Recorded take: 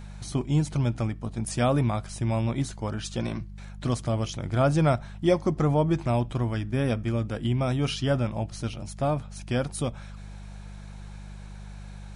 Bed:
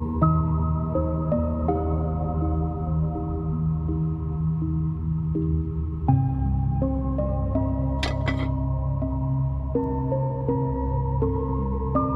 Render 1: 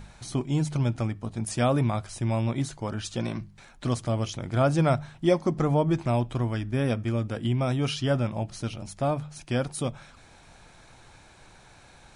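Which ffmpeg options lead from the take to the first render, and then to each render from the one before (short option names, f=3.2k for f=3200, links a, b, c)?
-af "bandreject=f=50:t=h:w=4,bandreject=f=100:t=h:w=4,bandreject=f=150:t=h:w=4,bandreject=f=200:t=h:w=4"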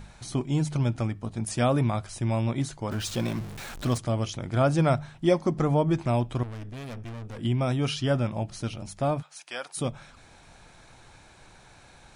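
-filter_complex "[0:a]asettb=1/sr,asplit=3[a][b][c];[a]atrim=end=2.914[d];[b]atrim=start=2.91:end=3.98,asetpts=PTS-STARTPTS,afade=t=in:d=0.004:c=qsin,afade=t=out:st=1.066:d=0.004:c=qsin,aeval=exprs='val(0)+0.5*0.0178*sgn(val(0))':c=same[e];[c]atrim=start=3.976[f];[d][e]acrossfade=d=0.004:c1=hsin:c2=qsin[g];[g][f]acrossfade=d=0.004:c1=qsin:c2=hsin,asettb=1/sr,asplit=3[h][i][j];[h]atrim=end=6.434[k];[i]atrim=start=6.43:end=7.39,asetpts=PTS-STARTPTS,afade=t=in:d=0.004:c=qsin,afade=t=out:st=0.956:d=0.004:c=qsin,aeval=exprs='(tanh(63.1*val(0)+0.45)-tanh(0.45))/63.1':c=same[l];[j]atrim=start=7.386[m];[k][l]acrossfade=d=0.004:c1=hsin:c2=qsin[n];[n][m]acrossfade=d=0.004:c1=qsin:c2=hsin,asplit=3[o][p][q];[o]afade=t=out:st=9.21:d=0.02[r];[p]highpass=860,afade=t=in:st=9.21:d=0.02,afade=t=out:st=9.76:d=0.02[s];[q]afade=t=in:st=9.76:d=0.02[t];[r][s][t]amix=inputs=3:normalize=0"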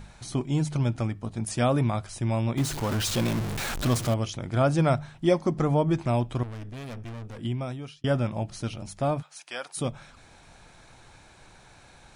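-filter_complex "[0:a]asettb=1/sr,asplit=3[a][b][c];[a]atrim=end=2.574[d];[b]atrim=start=2.57:end=4.14,asetpts=PTS-STARTPTS,afade=t=in:d=0.004:c=qsin,afade=t=out:st=1.566:d=0.004:c=qsin,aeval=exprs='val(0)+0.5*0.0355*sgn(val(0))':c=same[e];[c]atrim=start=4.136[f];[d][e]acrossfade=d=0.004:c1=hsin:c2=qsin[g];[g][f]acrossfade=d=0.004:c1=qsin:c2=hsin,asplit=2[h][i];[h]atrim=end=8.04,asetpts=PTS-STARTPTS,afade=t=out:st=7.21:d=0.83[j];[i]atrim=start=8.04,asetpts=PTS-STARTPTS,afade=t=in:d=0.004:c=hsin[k];[j][k]concat=n=2:v=0:a=1"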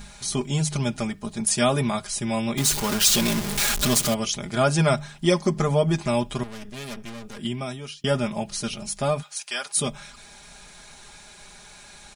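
-af "highshelf=f=2.6k:g=12,aecho=1:1:4.9:0.81"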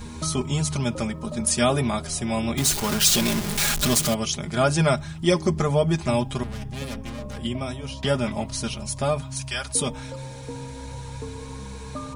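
-filter_complex "[1:a]volume=-11.5dB[a];[0:a][a]amix=inputs=2:normalize=0"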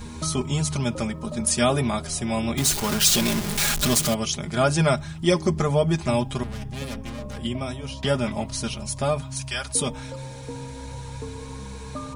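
-af anull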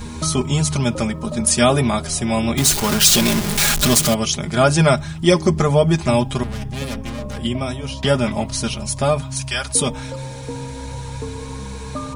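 -af "volume=6dB,alimiter=limit=-1dB:level=0:latency=1"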